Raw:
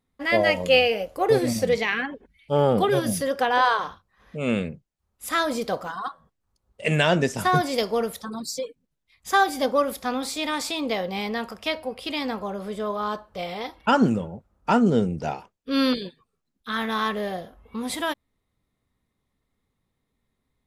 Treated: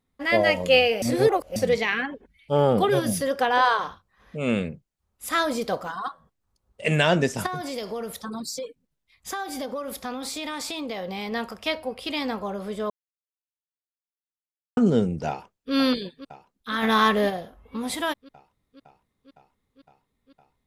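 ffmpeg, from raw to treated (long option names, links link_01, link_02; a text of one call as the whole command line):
ffmpeg -i in.wav -filter_complex "[0:a]asettb=1/sr,asplit=3[link_01][link_02][link_03];[link_01]atrim=end=7.464[link_04];[link_02]atrim=start=7.46:end=11.32,asetpts=PTS-STARTPTS,afade=type=in:duration=0.004:curve=qsin,afade=type=out:start_time=3.856:duration=0.004:curve=qsin,acompressor=threshold=-28dB:ratio=6:attack=3.2:release=140:knee=1:detection=peak[link_05];[link_03]atrim=start=11.316[link_06];[link_04][link_05]acrossfade=duration=0.004:curve1=hsin:curve2=qsin[link_07];[link_07][link_06]acrossfade=duration=0.004:curve1=qsin:curve2=hsin,asplit=2[link_08][link_09];[link_09]afade=type=in:start_time=15.28:duration=0.01,afade=type=out:start_time=15.73:duration=0.01,aecho=0:1:510|1020|1530|2040|2550|3060|3570|4080|4590|5100|5610|6120:0.237137|0.18971|0.151768|0.121414|0.0971315|0.0777052|0.0621641|0.0497313|0.039785|0.031828|0.0254624|0.0203699[link_10];[link_08][link_10]amix=inputs=2:normalize=0,asplit=3[link_11][link_12][link_13];[link_11]afade=type=out:start_time=16.82:duration=0.02[link_14];[link_12]acontrast=62,afade=type=in:start_time=16.82:duration=0.02,afade=type=out:start_time=17.29:duration=0.02[link_15];[link_13]afade=type=in:start_time=17.29:duration=0.02[link_16];[link_14][link_15][link_16]amix=inputs=3:normalize=0,asplit=5[link_17][link_18][link_19][link_20][link_21];[link_17]atrim=end=1.022[link_22];[link_18]atrim=start=1.018:end=1.562,asetpts=PTS-STARTPTS,areverse[link_23];[link_19]atrim=start=1.558:end=12.9,asetpts=PTS-STARTPTS,afade=type=out:start_time=11.338:duration=0.004:curve=hsin[link_24];[link_20]atrim=start=12.9:end=14.77,asetpts=PTS-STARTPTS,volume=0[link_25];[link_21]atrim=start=14.77,asetpts=PTS-STARTPTS,afade=type=in:duration=0.004:curve=hsin[link_26];[link_22][link_23]acrossfade=duration=0.004:curve1=hsin:curve2=hsin[link_27];[link_24][link_25][link_26]concat=n=3:v=0:a=1[link_28];[link_27][link_28]acrossfade=duration=0.004:curve1=hsin:curve2=hsin" out.wav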